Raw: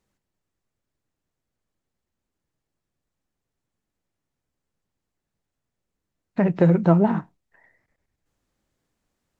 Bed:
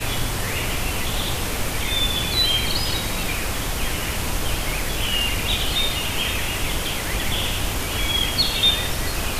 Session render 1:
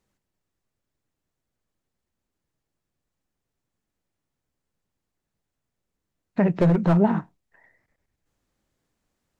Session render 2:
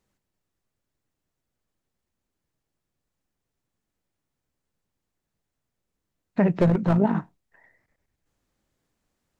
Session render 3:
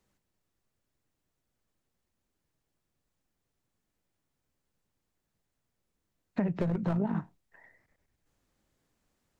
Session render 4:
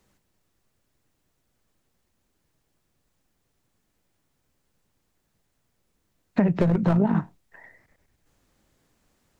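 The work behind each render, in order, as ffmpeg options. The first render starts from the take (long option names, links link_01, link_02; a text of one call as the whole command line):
ffmpeg -i in.wav -filter_complex "[0:a]asettb=1/sr,asplit=3[link_01][link_02][link_03];[link_01]atrim=end=6.504[link_04];[link_02]atrim=start=6.5:end=6.97,asetpts=PTS-STARTPTS,afade=type=in:duration=0.004:curve=qsin,afade=type=out:start_time=0.466:duration=0.004:curve=qsin,aeval=exprs='clip(val(0),-1,0.178)':channel_layout=same[link_05];[link_03]atrim=start=6.966[link_06];[link_04][link_05]acrossfade=duration=0.004:curve1=hsin:curve2=qsin[link_07];[link_07][link_06]acrossfade=duration=0.004:curve1=qsin:curve2=hsin" out.wav
ffmpeg -i in.wav -filter_complex "[0:a]asettb=1/sr,asplit=3[link_01][link_02][link_03];[link_01]atrim=end=6.664[link_04];[link_02]atrim=start=6.66:end=7.15,asetpts=PTS-STARTPTS,afade=type=in:duration=0.004:curve=qsin,afade=type=out:start_time=0.486:duration=0.004:curve=qsin,tremolo=f=53:d=0.462[link_05];[link_03]atrim=start=7.146[link_06];[link_04][link_05]acrossfade=duration=0.004:curve1=hsin:curve2=qsin[link_07];[link_07][link_06]acrossfade=duration=0.004:curve1=qsin:curve2=hsin" out.wav
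ffmpeg -i in.wav -filter_complex "[0:a]acrossover=split=150[link_01][link_02];[link_01]alimiter=level_in=6.5dB:limit=-24dB:level=0:latency=1,volume=-6.5dB[link_03];[link_02]acompressor=threshold=-29dB:ratio=12[link_04];[link_03][link_04]amix=inputs=2:normalize=0" out.wav
ffmpeg -i in.wav -af "volume=9dB" out.wav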